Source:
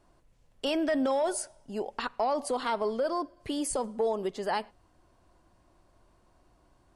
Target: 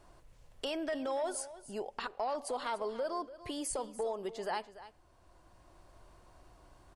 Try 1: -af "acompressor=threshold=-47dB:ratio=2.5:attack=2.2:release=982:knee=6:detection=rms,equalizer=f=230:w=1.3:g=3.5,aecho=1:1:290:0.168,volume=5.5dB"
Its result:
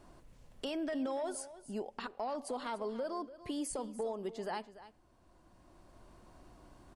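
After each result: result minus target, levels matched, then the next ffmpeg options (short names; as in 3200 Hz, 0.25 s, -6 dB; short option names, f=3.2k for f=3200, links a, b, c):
250 Hz band +5.0 dB; compressor: peak gain reduction +4 dB
-af "acompressor=threshold=-47dB:ratio=2.5:attack=2.2:release=982:knee=6:detection=rms,equalizer=f=230:w=1.3:g=-6,aecho=1:1:290:0.168,volume=5.5dB"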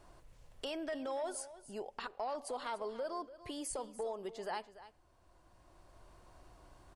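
compressor: peak gain reduction +4 dB
-af "acompressor=threshold=-40.5dB:ratio=2.5:attack=2.2:release=982:knee=6:detection=rms,equalizer=f=230:w=1.3:g=-6,aecho=1:1:290:0.168,volume=5.5dB"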